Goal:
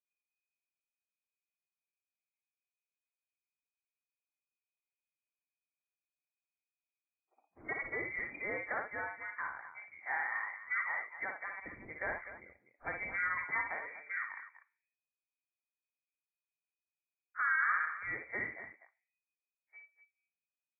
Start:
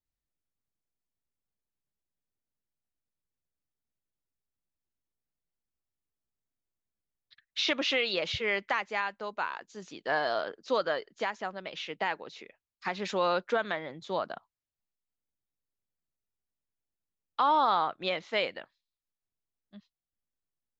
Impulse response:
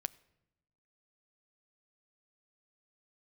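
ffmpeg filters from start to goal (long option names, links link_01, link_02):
-filter_complex "[1:a]atrim=start_sample=2205,asetrate=70560,aresample=44100[link_01];[0:a][link_01]afir=irnorm=-1:irlink=0,lowpass=frequency=2100:width_type=q:width=0.5098,lowpass=frequency=2100:width_type=q:width=0.6013,lowpass=frequency=2100:width_type=q:width=0.9,lowpass=frequency=2100:width_type=q:width=2.563,afreqshift=-2500,asettb=1/sr,asplit=3[link_02][link_03][link_04];[link_02]atrim=end=11.544[link_05];[link_03]atrim=start=11.54:end=13.67,asetpts=PTS-STARTPTS,afade=type=in:duration=0.004:curve=qsin,afade=type=out:start_time=2.126:duration=0.004:curve=qsin,lowshelf=frequency=320:gain=11.5[link_06];[link_04]atrim=start=13.666[link_07];[link_05][link_06]acrossfade=duration=0.004:curve1=hsin:curve2=qsin[link_08];[link_08][link_07]acrossfade=duration=0.004:curve1=qsin:curve2=hsin,aecho=1:1:57|87|247:0.562|0.1|0.237,volume=-2.5dB" -ar 44100 -c:a libvorbis -b:a 32k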